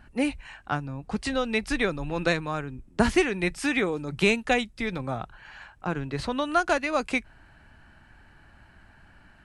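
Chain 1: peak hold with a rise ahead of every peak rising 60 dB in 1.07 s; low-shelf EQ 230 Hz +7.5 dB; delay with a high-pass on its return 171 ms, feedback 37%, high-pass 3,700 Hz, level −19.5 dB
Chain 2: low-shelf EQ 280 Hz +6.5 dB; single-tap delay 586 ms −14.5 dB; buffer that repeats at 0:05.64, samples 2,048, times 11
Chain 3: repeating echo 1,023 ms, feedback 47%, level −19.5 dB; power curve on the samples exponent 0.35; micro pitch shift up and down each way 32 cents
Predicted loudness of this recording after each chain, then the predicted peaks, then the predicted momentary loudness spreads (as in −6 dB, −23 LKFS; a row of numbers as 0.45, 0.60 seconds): −22.0, −25.0, −20.5 LKFS; −1.5, −4.0, −7.0 dBFS; 10, 18, 8 LU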